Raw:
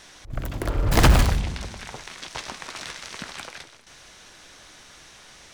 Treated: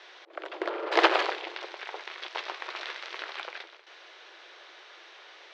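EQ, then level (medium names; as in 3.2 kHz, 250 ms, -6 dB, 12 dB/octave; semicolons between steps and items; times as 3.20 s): brick-wall FIR high-pass 320 Hz; low-pass 4 kHz 24 dB/octave; 0.0 dB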